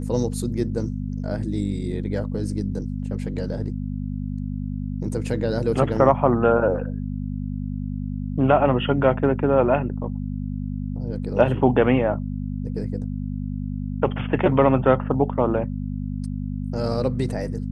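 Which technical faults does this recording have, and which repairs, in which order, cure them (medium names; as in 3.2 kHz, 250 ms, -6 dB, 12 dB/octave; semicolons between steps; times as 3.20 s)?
hum 50 Hz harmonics 5 -28 dBFS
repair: de-hum 50 Hz, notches 5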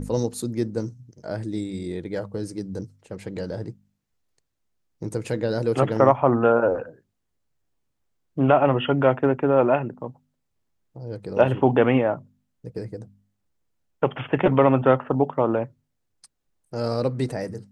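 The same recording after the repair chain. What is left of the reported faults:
nothing left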